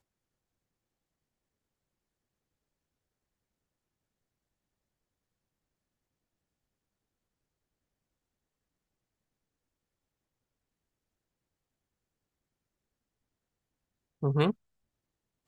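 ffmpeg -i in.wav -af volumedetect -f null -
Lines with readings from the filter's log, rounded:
mean_volume: -43.0 dB
max_volume: -12.0 dB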